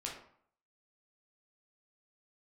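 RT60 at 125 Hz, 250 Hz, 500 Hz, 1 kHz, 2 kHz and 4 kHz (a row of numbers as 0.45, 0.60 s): 0.60, 0.60, 0.60, 0.65, 0.50, 0.35 s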